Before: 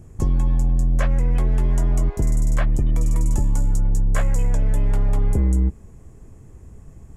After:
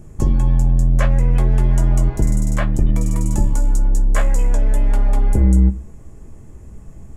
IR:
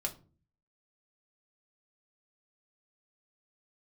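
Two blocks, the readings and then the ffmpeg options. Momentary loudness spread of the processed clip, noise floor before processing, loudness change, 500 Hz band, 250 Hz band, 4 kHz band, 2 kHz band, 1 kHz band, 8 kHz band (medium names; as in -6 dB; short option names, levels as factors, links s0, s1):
4 LU, -44 dBFS, +3.5 dB, +3.5 dB, +5.5 dB, +4.5 dB, +4.0 dB, +4.5 dB, +4.0 dB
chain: -filter_complex "[0:a]asplit=2[s0][s1];[1:a]atrim=start_sample=2205,atrim=end_sample=6174[s2];[s1][s2]afir=irnorm=-1:irlink=0,volume=0.891[s3];[s0][s3]amix=inputs=2:normalize=0,volume=0.841"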